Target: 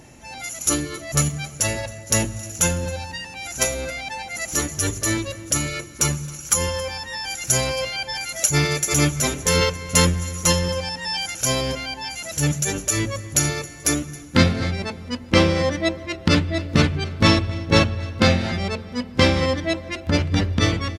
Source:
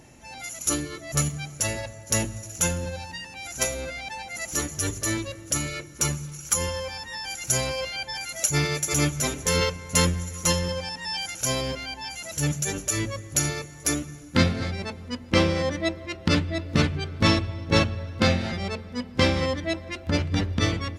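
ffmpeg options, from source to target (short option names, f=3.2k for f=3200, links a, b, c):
-af "aecho=1:1:270:0.0841,volume=4.5dB"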